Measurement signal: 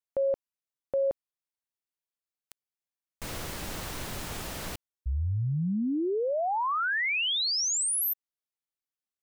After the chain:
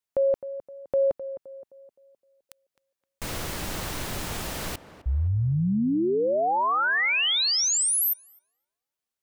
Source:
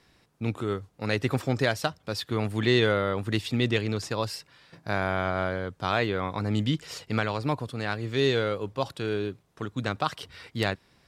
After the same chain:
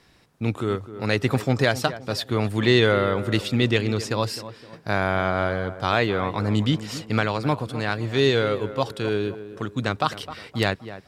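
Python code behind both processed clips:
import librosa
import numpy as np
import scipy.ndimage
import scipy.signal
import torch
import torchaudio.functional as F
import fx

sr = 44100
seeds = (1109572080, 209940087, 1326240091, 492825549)

y = fx.echo_tape(x, sr, ms=259, feedback_pct=46, wet_db=-12, lp_hz=1400.0, drive_db=6.0, wow_cents=14)
y = F.gain(torch.from_numpy(y), 4.5).numpy()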